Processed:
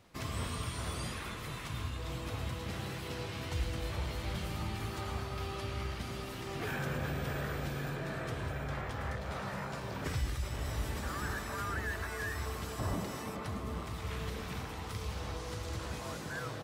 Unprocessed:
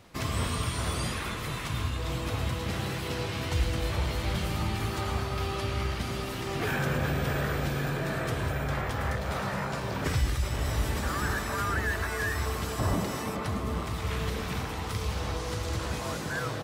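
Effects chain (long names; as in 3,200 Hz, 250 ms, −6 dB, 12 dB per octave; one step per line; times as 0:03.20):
0:07.95–0:09.47: high-shelf EQ 11,000 Hz −8 dB
level −7.5 dB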